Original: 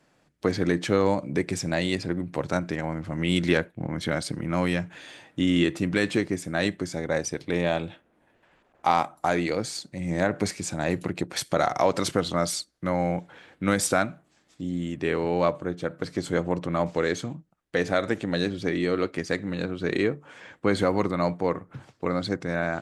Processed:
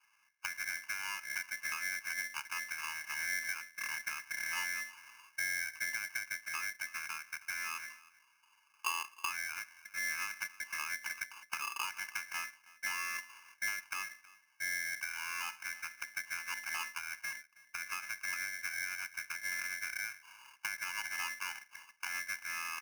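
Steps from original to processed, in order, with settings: Chebyshev band-pass 180–1000 Hz, order 5; compressor, threshold -32 dBFS, peak gain reduction 14 dB; comb 1 ms, depth 60%; on a send: echo 0.32 s -21 dB; on the sum: polarity switched at an audio rate 1900 Hz; gain -3.5 dB

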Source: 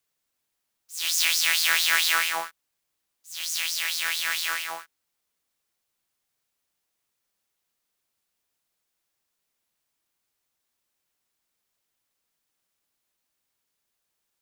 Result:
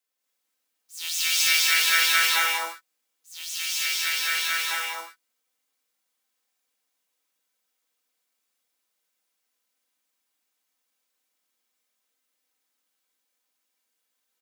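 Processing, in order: HPF 280 Hz 12 dB/oct; comb 3.9 ms, depth 49%; non-linear reverb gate 0.31 s rising, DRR -5.5 dB; gain -6 dB

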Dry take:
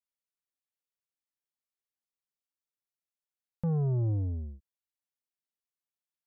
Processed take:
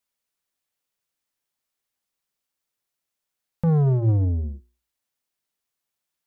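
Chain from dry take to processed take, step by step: notches 60/120/180/240/300/360/420 Hz; in parallel at -10.5 dB: overloaded stage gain 32.5 dB; on the sum: gain +8.5 dB

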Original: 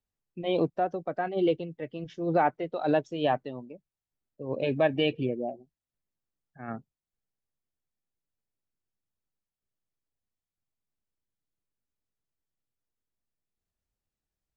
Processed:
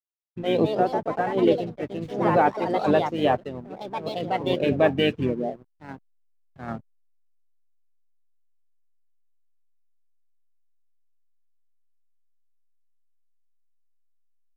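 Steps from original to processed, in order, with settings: echoes that change speed 0.269 s, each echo +3 st, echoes 2, each echo -6 dB; harmoniser -7 st -9 dB, -4 st -15 dB; backlash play -46.5 dBFS; gain +4 dB

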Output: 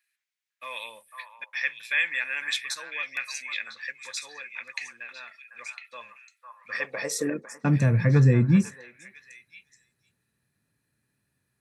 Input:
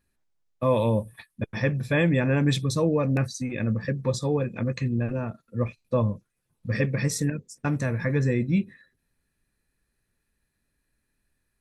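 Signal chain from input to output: delay with a stepping band-pass 0.502 s, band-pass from 1100 Hz, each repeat 1.4 oct, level -4.5 dB; high-pass sweep 2100 Hz -> 120 Hz, 6.42–7.88

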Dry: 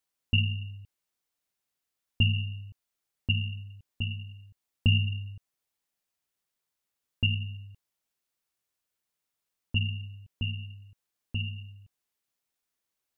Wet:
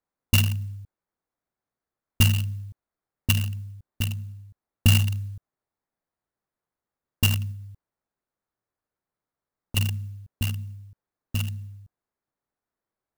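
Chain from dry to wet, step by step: Wiener smoothing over 15 samples; 7.51–9.77 compressor 2:1, threshold -42 dBFS, peak gain reduction 9.5 dB; clock jitter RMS 0.044 ms; gain +5.5 dB

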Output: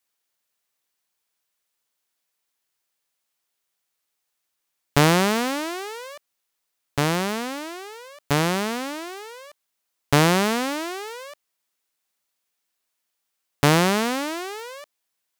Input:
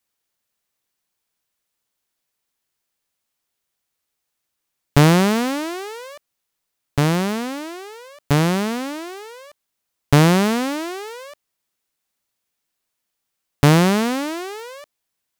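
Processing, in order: low shelf 280 Hz -9.5 dB

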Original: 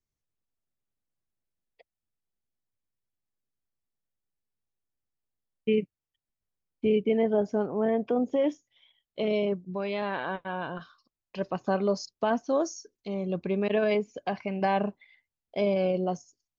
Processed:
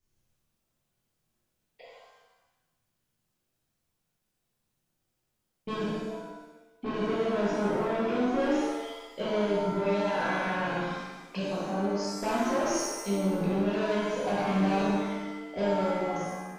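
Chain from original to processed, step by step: ending faded out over 1.10 s; 10.62–12.13 compressor 6:1, threshold -38 dBFS, peak gain reduction 16 dB; soft clip -28.5 dBFS, distortion -8 dB; bell 160 Hz +5 dB 0.26 oct; flutter echo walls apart 10.2 m, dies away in 0.53 s; limiter -34.5 dBFS, peak gain reduction 11 dB; shimmer reverb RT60 1.1 s, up +7 st, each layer -8 dB, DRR -7.5 dB; gain +3.5 dB

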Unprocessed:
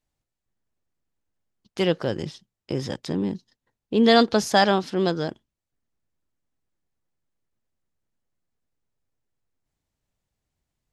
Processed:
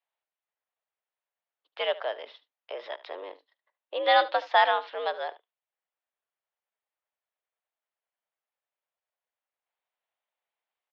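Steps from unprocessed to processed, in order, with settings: echo 74 ms -18 dB; mistuned SSB +88 Hz 490–3500 Hz; gain -1.5 dB

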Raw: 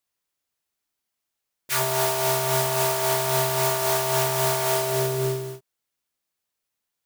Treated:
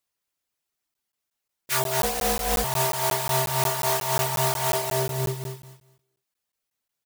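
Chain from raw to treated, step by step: reverb removal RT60 0.63 s; on a send: feedback echo 0.213 s, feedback 21%, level -7 dB; 2.03–2.64 on the sum: frequency shift -180 Hz; crackling interface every 0.18 s, samples 512, zero, from 0.94

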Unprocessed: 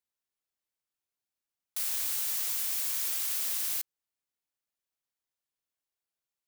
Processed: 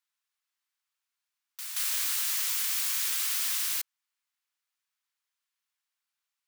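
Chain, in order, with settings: HPF 1000 Hz 24 dB/oct; high shelf 6700 Hz -7 dB; reverse echo 0.177 s -8 dB; gain +7 dB

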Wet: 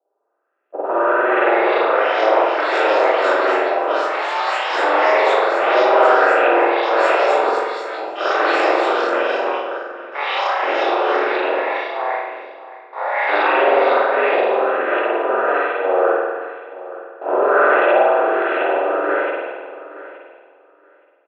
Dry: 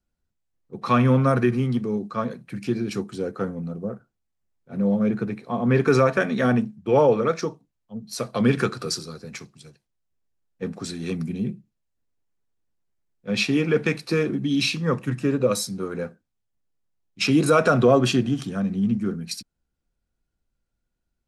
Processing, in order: per-bin compression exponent 0.2; gate -13 dBFS, range -44 dB; in parallel at -8.5 dB: decimation with a swept rate 23×, swing 160% 0.28 Hz; on the sum: LFO low-pass saw up 1.4 Hz 610–2600 Hz; mistuned SSB +100 Hz 260–3400 Hz; on a send: feedback echo 0.872 s, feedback 16%, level -16.5 dB; on the sum: spring tank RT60 1.4 s, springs 46 ms, chirp 35 ms, DRR -9 dB; echoes that change speed 0.757 s, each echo +6 st, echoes 3, each echo -6 dB; gain -17 dB

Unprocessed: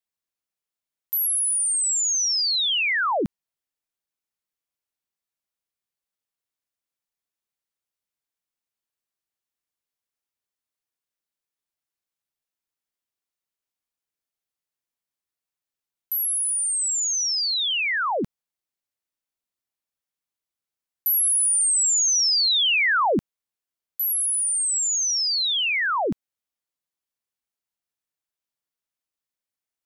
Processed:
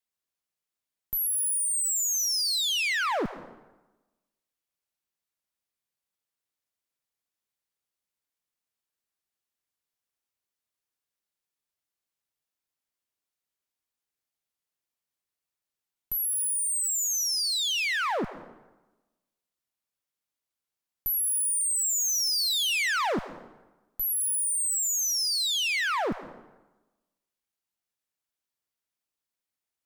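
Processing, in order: one-sided clip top -36 dBFS, bottom -21 dBFS; plate-style reverb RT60 1.1 s, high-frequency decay 0.7×, pre-delay 0.1 s, DRR 14.5 dB

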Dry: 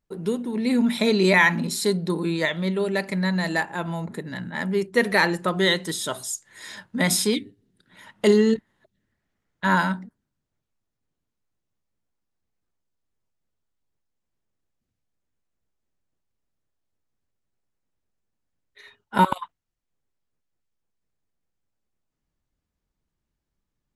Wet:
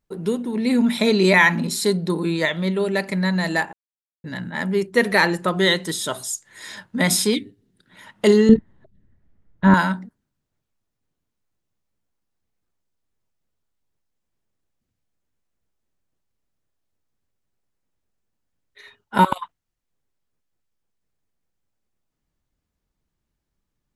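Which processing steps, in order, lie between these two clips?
3.73–4.24 mute; 8.49–9.74 tilt -4 dB/oct; gain +2.5 dB

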